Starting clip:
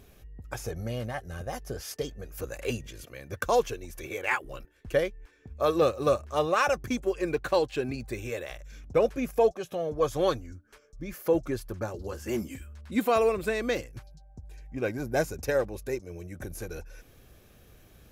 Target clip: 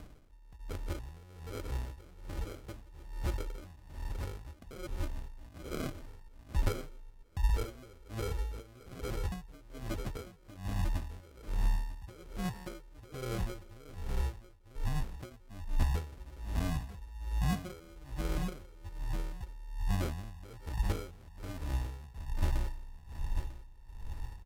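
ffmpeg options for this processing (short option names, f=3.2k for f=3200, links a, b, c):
-filter_complex "[0:a]lowshelf=f=320:g=2.5,asplit=2[a][b];[b]adelay=120,highpass=300,lowpass=3.4k,asoftclip=type=hard:threshold=-22.5dB,volume=-14dB[c];[a][c]amix=inputs=2:normalize=0,acompressor=threshold=-38dB:ratio=4,aresample=8000,acrusher=bits=5:mode=log:mix=0:aa=0.000001,aresample=44100,asubboost=boost=6:cutoff=140,acrusher=samples=36:mix=1:aa=0.000001,asplit=2[d][e];[e]aecho=0:1:701:0.398[f];[d][f]amix=inputs=2:normalize=0,asetrate=32667,aresample=44100,aeval=exprs='val(0)*pow(10,-20*(0.5-0.5*cos(2*PI*1.2*n/s))/20)':c=same,volume=3dB"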